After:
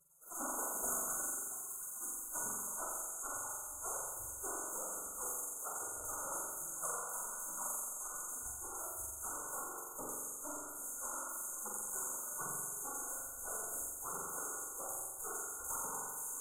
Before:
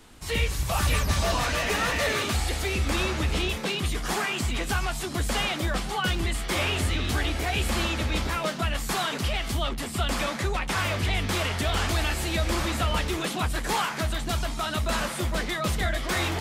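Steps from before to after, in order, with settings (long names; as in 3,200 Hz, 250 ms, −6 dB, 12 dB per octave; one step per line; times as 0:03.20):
0:05.37–0:05.86: sub-octave generator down 2 octaves, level −2 dB
0:07.95–0:08.74: mains-hum notches 60/120/180/240 Hz
gate on every frequency bin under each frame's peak −30 dB weak
phase shifter 1.2 Hz, delay 3.8 ms, feedback 55%
brick-wall band-stop 1,500–6,300 Hz
high-shelf EQ 12,000 Hz −10 dB
on a send: flutter between parallel walls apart 7.5 metres, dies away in 1.3 s
on the sum: level +1 dB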